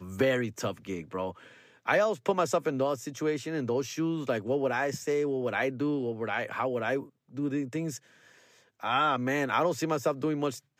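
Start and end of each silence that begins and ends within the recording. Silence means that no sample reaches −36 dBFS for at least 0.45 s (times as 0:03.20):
0:01.31–0:01.88
0:07.97–0:08.83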